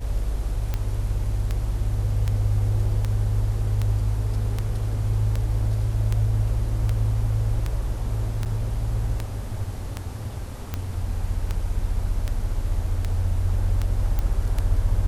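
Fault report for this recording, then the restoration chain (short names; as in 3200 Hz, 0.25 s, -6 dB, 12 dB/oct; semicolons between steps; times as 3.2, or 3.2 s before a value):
tick 78 rpm -13 dBFS
8.45–8.46 gap 8.4 ms
14.19 pop -13 dBFS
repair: de-click; interpolate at 8.45, 8.4 ms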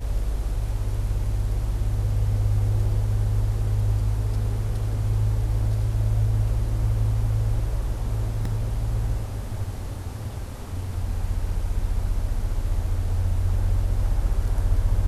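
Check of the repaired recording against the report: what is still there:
none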